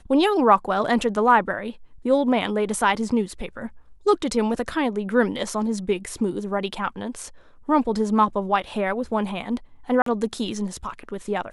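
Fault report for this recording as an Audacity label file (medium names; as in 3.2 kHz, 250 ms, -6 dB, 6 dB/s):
10.020000	10.060000	dropout 43 ms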